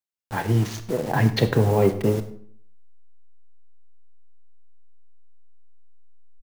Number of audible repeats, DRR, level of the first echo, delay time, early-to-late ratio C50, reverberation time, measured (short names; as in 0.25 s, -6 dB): 1, 9.5 dB, -20.5 dB, 0.101 s, 12.5 dB, 0.55 s